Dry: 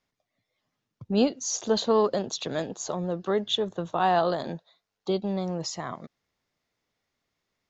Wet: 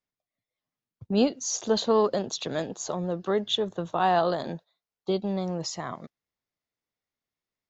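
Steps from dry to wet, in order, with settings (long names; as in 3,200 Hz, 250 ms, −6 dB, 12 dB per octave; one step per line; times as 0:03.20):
noise gate −43 dBFS, range −12 dB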